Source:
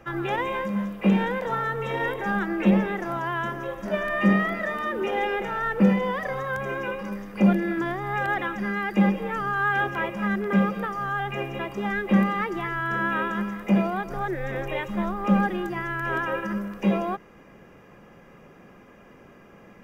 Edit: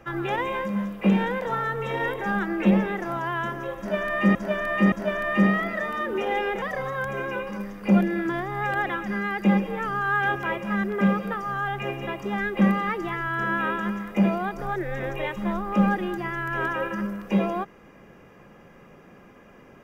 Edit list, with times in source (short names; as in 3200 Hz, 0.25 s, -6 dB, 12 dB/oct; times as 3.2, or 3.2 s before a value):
3.78–4.35 loop, 3 plays
5.48–6.14 cut